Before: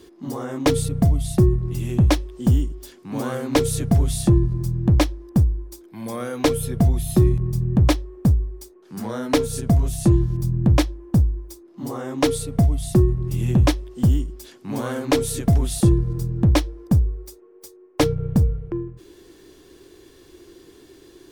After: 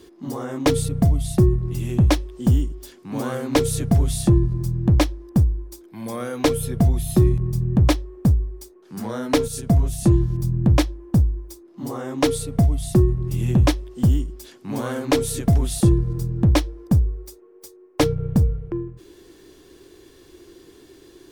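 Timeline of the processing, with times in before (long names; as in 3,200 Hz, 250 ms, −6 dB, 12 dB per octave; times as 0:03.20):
0:09.48–0:10.03: multiband upward and downward expander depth 40%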